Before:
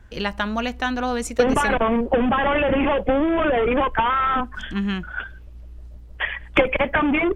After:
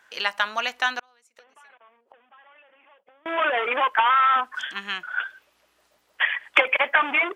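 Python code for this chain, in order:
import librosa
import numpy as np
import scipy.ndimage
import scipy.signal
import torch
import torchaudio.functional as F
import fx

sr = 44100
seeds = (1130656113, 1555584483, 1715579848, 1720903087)

y = scipy.signal.sosfilt(scipy.signal.butter(2, 960.0, 'highpass', fs=sr, output='sos'), x)
y = fx.gate_flip(y, sr, shuts_db=-27.0, range_db=-33, at=(0.99, 3.26))
y = y * librosa.db_to_amplitude(3.5)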